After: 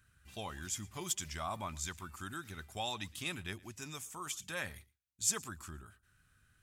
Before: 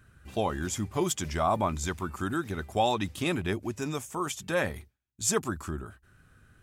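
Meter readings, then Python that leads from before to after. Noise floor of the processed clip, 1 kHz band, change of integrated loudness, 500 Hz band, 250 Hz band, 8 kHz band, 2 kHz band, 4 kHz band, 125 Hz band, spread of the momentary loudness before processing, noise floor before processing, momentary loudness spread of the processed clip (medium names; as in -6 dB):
-73 dBFS, -13.0 dB, -9.0 dB, -17.5 dB, -16.0 dB, -3.5 dB, -8.0 dB, -4.5 dB, -12.5 dB, 8 LU, -67 dBFS, 13 LU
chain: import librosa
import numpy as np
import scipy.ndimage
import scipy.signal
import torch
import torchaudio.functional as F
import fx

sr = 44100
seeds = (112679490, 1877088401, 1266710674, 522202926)

y = fx.tone_stack(x, sr, knobs='5-5-5')
y = y + 10.0 ** (-23.5 / 20.0) * np.pad(y, (int(115 * sr / 1000.0), 0))[:len(y)]
y = y * 10.0 ** (2.5 / 20.0)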